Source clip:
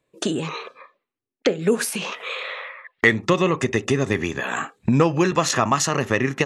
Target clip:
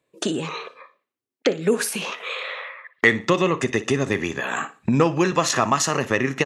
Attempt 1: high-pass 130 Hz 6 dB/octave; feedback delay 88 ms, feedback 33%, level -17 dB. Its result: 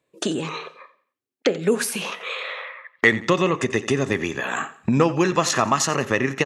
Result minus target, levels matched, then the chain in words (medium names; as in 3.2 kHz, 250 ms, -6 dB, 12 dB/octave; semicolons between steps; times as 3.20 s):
echo 29 ms late
high-pass 130 Hz 6 dB/octave; feedback delay 59 ms, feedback 33%, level -17 dB